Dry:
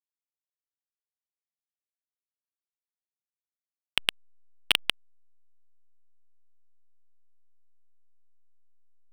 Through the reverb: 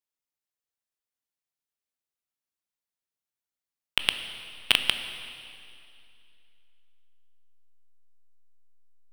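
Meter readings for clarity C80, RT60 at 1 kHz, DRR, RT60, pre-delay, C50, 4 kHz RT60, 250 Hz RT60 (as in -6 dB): 10.0 dB, 2.4 s, 8.0 dB, 2.5 s, 14 ms, 9.0 dB, 2.5 s, 2.8 s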